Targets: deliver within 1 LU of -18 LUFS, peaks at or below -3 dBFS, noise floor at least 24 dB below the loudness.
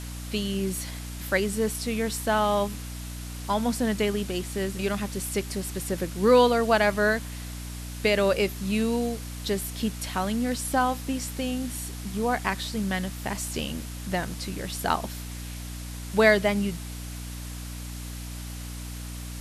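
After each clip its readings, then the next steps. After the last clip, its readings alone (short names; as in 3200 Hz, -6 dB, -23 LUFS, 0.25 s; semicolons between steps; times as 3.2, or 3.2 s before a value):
hum 60 Hz; harmonics up to 300 Hz; hum level -35 dBFS; noise floor -37 dBFS; noise floor target -52 dBFS; loudness -27.5 LUFS; peak -6.5 dBFS; loudness target -18.0 LUFS
-> notches 60/120/180/240/300 Hz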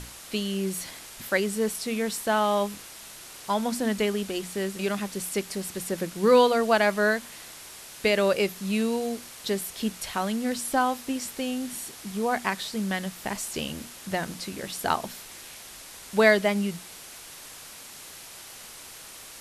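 hum none; noise floor -45 dBFS; noise floor target -51 dBFS
-> denoiser 6 dB, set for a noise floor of -45 dBFS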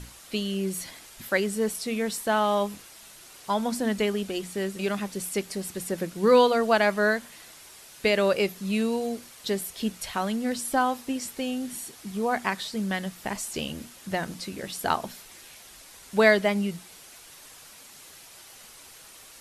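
noise floor -49 dBFS; noise floor target -51 dBFS
-> denoiser 6 dB, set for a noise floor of -49 dBFS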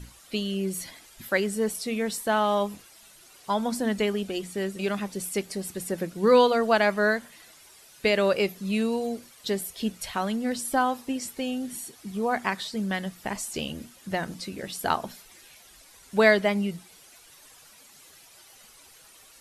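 noise floor -53 dBFS; loudness -27.0 LUFS; peak -7.0 dBFS; loudness target -18.0 LUFS
-> gain +9 dB; limiter -3 dBFS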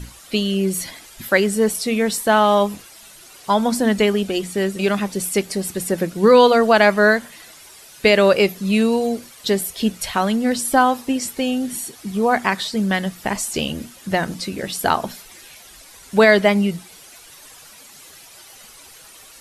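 loudness -18.5 LUFS; peak -3.0 dBFS; noise floor -44 dBFS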